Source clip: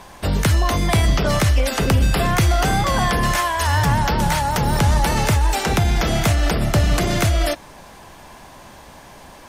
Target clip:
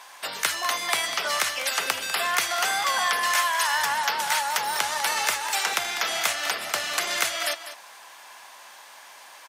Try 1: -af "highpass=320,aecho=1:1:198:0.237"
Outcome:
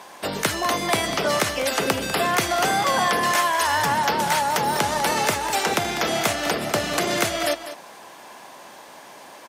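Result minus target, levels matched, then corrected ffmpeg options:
250 Hz band +16.5 dB
-af "highpass=1100,aecho=1:1:198:0.237"

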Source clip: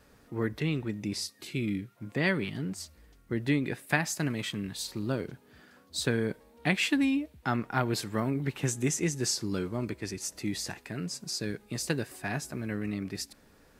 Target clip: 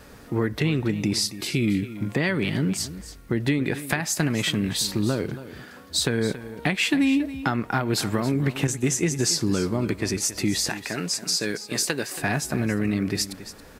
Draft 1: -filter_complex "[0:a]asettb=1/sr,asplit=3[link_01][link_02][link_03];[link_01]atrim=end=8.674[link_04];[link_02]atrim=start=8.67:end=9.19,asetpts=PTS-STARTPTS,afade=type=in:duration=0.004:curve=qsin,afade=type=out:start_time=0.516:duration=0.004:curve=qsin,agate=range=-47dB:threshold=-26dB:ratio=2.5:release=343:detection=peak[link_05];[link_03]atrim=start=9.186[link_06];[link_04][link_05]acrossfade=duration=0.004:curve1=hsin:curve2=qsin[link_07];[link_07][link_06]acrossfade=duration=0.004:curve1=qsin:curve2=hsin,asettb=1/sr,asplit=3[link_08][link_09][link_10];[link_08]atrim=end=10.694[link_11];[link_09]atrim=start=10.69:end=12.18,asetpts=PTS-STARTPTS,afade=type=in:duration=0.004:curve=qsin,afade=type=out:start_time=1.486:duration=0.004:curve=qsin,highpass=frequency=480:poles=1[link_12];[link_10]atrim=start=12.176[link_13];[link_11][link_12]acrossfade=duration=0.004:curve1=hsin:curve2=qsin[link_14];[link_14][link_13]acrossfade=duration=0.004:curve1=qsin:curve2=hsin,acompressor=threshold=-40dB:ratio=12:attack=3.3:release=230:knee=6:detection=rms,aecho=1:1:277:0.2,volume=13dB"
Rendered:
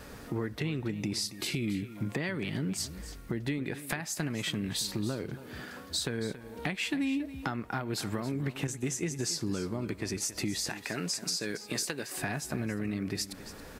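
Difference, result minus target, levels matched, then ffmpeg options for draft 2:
downward compressor: peak gain reduction +10 dB
-filter_complex "[0:a]asettb=1/sr,asplit=3[link_01][link_02][link_03];[link_01]atrim=end=8.674[link_04];[link_02]atrim=start=8.67:end=9.19,asetpts=PTS-STARTPTS,afade=type=in:duration=0.004:curve=qsin,afade=type=out:start_time=0.516:duration=0.004:curve=qsin,agate=range=-47dB:threshold=-26dB:ratio=2.5:release=343:detection=peak[link_05];[link_03]atrim=start=9.186[link_06];[link_04][link_05]acrossfade=duration=0.004:curve1=hsin:curve2=qsin[link_07];[link_07][link_06]acrossfade=duration=0.004:curve1=qsin:curve2=hsin,asettb=1/sr,asplit=3[link_08][link_09][link_10];[link_08]atrim=end=10.694[link_11];[link_09]atrim=start=10.69:end=12.18,asetpts=PTS-STARTPTS,afade=type=in:duration=0.004:curve=qsin,afade=type=out:start_time=1.486:duration=0.004:curve=qsin,highpass=frequency=480:poles=1[link_12];[link_10]atrim=start=12.176[link_13];[link_11][link_12]acrossfade=duration=0.004:curve1=hsin:curve2=qsin[link_14];[link_14][link_13]acrossfade=duration=0.004:curve1=qsin:curve2=hsin,acompressor=threshold=-29dB:ratio=12:attack=3.3:release=230:knee=6:detection=rms,aecho=1:1:277:0.2,volume=13dB"

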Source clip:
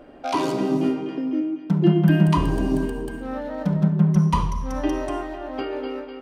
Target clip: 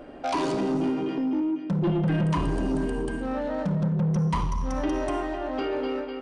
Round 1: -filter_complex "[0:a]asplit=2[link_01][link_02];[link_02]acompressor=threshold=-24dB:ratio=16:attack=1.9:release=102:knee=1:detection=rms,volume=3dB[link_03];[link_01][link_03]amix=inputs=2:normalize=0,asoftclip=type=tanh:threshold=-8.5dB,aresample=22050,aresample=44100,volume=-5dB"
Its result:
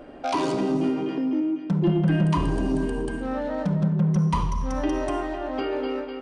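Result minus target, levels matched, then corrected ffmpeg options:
soft clipping: distortion −8 dB
-filter_complex "[0:a]asplit=2[link_01][link_02];[link_02]acompressor=threshold=-24dB:ratio=16:attack=1.9:release=102:knee=1:detection=rms,volume=3dB[link_03];[link_01][link_03]amix=inputs=2:normalize=0,asoftclip=type=tanh:threshold=-15dB,aresample=22050,aresample=44100,volume=-5dB"

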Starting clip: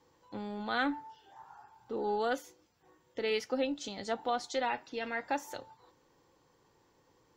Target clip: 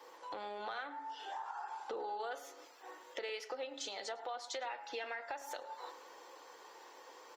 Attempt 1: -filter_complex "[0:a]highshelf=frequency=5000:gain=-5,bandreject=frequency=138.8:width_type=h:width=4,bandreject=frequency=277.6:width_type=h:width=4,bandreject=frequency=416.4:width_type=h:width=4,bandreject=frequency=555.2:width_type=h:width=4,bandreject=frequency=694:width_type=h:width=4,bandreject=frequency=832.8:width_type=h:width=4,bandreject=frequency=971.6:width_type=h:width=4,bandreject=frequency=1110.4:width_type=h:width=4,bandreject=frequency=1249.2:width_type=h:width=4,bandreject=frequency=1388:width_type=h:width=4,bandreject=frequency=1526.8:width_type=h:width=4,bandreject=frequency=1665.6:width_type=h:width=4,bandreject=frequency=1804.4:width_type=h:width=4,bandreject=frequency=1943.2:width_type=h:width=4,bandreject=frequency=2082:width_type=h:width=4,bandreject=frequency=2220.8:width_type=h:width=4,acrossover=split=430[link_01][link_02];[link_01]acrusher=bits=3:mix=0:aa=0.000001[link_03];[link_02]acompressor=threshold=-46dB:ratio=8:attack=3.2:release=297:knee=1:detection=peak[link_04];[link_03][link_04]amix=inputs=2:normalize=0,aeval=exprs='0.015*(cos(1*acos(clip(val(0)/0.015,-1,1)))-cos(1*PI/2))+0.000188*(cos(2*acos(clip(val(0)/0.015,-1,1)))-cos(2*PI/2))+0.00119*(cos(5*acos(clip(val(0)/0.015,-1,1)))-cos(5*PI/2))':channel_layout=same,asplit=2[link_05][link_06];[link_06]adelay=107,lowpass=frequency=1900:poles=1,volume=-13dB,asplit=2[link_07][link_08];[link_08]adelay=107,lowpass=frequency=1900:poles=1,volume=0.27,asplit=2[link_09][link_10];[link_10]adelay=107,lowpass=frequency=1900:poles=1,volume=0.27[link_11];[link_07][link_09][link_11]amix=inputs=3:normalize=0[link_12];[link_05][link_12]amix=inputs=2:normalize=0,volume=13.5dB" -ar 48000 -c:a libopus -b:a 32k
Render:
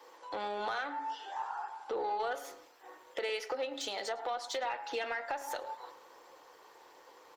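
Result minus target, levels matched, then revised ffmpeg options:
downward compressor: peak gain reduction −7.5 dB
-filter_complex "[0:a]highshelf=frequency=5000:gain=-5,bandreject=frequency=138.8:width_type=h:width=4,bandreject=frequency=277.6:width_type=h:width=4,bandreject=frequency=416.4:width_type=h:width=4,bandreject=frequency=555.2:width_type=h:width=4,bandreject=frequency=694:width_type=h:width=4,bandreject=frequency=832.8:width_type=h:width=4,bandreject=frequency=971.6:width_type=h:width=4,bandreject=frequency=1110.4:width_type=h:width=4,bandreject=frequency=1249.2:width_type=h:width=4,bandreject=frequency=1388:width_type=h:width=4,bandreject=frequency=1526.8:width_type=h:width=4,bandreject=frequency=1665.6:width_type=h:width=4,bandreject=frequency=1804.4:width_type=h:width=4,bandreject=frequency=1943.2:width_type=h:width=4,bandreject=frequency=2082:width_type=h:width=4,bandreject=frequency=2220.8:width_type=h:width=4,acrossover=split=430[link_01][link_02];[link_01]acrusher=bits=3:mix=0:aa=0.000001[link_03];[link_02]acompressor=threshold=-54.5dB:ratio=8:attack=3.2:release=297:knee=1:detection=peak[link_04];[link_03][link_04]amix=inputs=2:normalize=0,aeval=exprs='0.015*(cos(1*acos(clip(val(0)/0.015,-1,1)))-cos(1*PI/2))+0.000188*(cos(2*acos(clip(val(0)/0.015,-1,1)))-cos(2*PI/2))+0.00119*(cos(5*acos(clip(val(0)/0.015,-1,1)))-cos(5*PI/2))':channel_layout=same,asplit=2[link_05][link_06];[link_06]adelay=107,lowpass=frequency=1900:poles=1,volume=-13dB,asplit=2[link_07][link_08];[link_08]adelay=107,lowpass=frequency=1900:poles=1,volume=0.27,asplit=2[link_09][link_10];[link_10]adelay=107,lowpass=frequency=1900:poles=1,volume=0.27[link_11];[link_07][link_09][link_11]amix=inputs=3:normalize=0[link_12];[link_05][link_12]amix=inputs=2:normalize=0,volume=13.5dB" -ar 48000 -c:a libopus -b:a 32k

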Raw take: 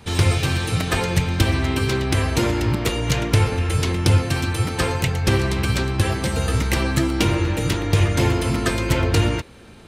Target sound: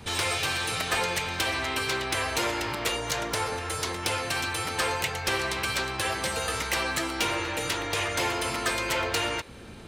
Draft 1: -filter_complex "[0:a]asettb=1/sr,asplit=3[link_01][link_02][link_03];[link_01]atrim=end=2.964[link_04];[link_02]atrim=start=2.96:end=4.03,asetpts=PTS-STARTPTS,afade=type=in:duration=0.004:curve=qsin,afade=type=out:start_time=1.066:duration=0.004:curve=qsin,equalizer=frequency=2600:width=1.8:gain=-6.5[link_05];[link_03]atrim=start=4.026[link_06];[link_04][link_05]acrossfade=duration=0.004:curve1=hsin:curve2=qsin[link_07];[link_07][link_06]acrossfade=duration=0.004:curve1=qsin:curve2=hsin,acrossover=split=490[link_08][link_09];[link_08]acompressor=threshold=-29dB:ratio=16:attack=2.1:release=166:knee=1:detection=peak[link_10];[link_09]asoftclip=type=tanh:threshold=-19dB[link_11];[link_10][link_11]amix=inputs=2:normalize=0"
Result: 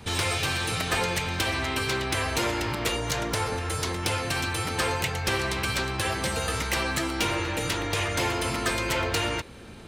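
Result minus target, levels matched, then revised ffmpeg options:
downward compressor: peak gain reduction −7 dB
-filter_complex "[0:a]asettb=1/sr,asplit=3[link_01][link_02][link_03];[link_01]atrim=end=2.964[link_04];[link_02]atrim=start=2.96:end=4.03,asetpts=PTS-STARTPTS,afade=type=in:duration=0.004:curve=qsin,afade=type=out:start_time=1.066:duration=0.004:curve=qsin,equalizer=frequency=2600:width=1.8:gain=-6.5[link_05];[link_03]atrim=start=4.026[link_06];[link_04][link_05]acrossfade=duration=0.004:curve1=hsin:curve2=qsin[link_07];[link_07][link_06]acrossfade=duration=0.004:curve1=qsin:curve2=hsin,acrossover=split=490[link_08][link_09];[link_08]acompressor=threshold=-36.5dB:ratio=16:attack=2.1:release=166:knee=1:detection=peak[link_10];[link_09]asoftclip=type=tanh:threshold=-19dB[link_11];[link_10][link_11]amix=inputs=2:normalize=0"

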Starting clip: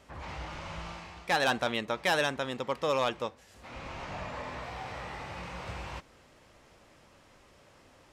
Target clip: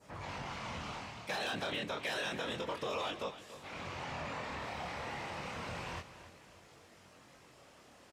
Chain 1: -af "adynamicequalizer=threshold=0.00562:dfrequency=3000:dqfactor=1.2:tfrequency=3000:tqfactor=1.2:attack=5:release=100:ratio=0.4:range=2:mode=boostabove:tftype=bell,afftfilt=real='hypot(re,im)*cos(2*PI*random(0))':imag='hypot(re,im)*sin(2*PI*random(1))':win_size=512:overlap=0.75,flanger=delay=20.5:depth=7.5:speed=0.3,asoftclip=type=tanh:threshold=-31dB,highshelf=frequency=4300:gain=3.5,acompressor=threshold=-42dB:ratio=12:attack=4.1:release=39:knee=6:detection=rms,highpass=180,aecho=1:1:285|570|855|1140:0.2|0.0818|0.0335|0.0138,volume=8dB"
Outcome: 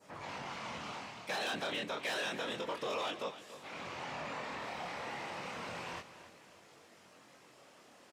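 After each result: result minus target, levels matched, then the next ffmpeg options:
soft clipping: distortion +15 dB; 125 Hz band −6.0 dB
-af "adynamicequalizer=threshold=0.00562:dfrequency=3000:dqfactor=1.2:tfrequency=3000:tqfactor=1.2:attack=5:release=100:ratio=0.4:range=2:mode=boostabove:tftype=bell,afftfilt=real='hypot(re,im)*cos(2*PI*random(0))':imag='hypot(re,im)*sin(2*PI*random(1))':win_size=512:overlap=0.75,flanger=delay=20.5:depth=7.5:speed=0.3,asoftclip=type=tanh:threshold=-21dB,highshelf=frequency=4300:gain=3.5,acompressor=threshold=-42dB:ratio=12:attack=4.1:release=39:knee=6:detection=rms,highpass=180,aecho=1:1:285|570|855|1140:0.2|0.0818|0.0335|0.0138,volume=8dB"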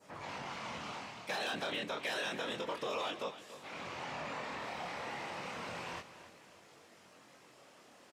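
125 Hz band −6.0 dB
-af "adynamicequalizer=threshold=0.00562:dfrequency=3000:dqfactor=1.2:tfrequency=3000:tqfactor=1.2:attack=5:release=100:ratio=0.4:range=2:mode=boostabove:tftype=bell,afftfilt=real='hypot(re,im)*cos(2*PI*random(0))':imag='hypot(re,im)*sin(2*PI*random(1))':win_size=512:overlap=0.75,flanger=delay=20.5:depth=7.5:speed=0.3,asoftclip=type=tanh:threshold=-21dB,highshelf=frequency=4300:gain=3.5,acompressor=threshold=-42dB:ratio=12:attack=4.1:release=39:knee=6:detection=rms,highpass=70,aecho=1:1:285|570|855|1140:0.2|0.0818|0.0335|0.0138,volume=8dB"

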